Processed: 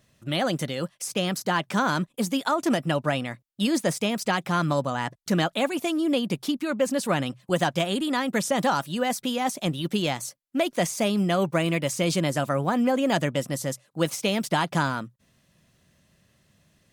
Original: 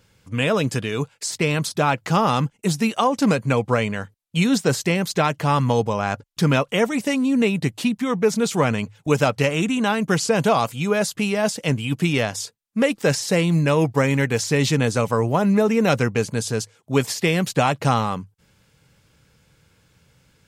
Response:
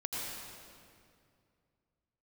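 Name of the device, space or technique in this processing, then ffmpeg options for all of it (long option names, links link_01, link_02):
nightcore: -af "asetrate=53361,aresample=44100,volume=-5dB"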